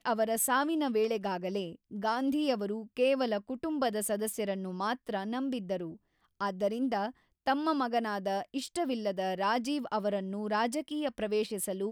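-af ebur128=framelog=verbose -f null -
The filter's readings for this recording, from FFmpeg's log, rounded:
Integrated loudness:
  I:         -32.3 LUFS
  Threshold: -42.3 LUFS
Loudness range:
  LRA:         3.2 LU
  Threshold: -52.7 LUFS
  LRA low:   -34.4 LUFS
  LRA high:  -31.2 LUFS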